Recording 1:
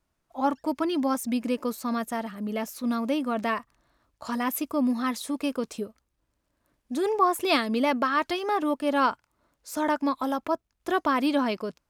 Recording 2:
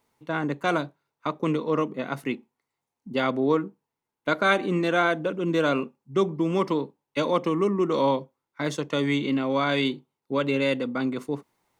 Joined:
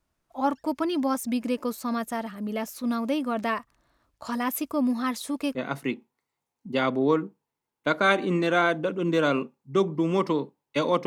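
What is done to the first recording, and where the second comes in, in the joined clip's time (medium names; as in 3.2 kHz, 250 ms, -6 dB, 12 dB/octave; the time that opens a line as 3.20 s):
recording 1
5.55 s: go over to recording 2 from 1.96 s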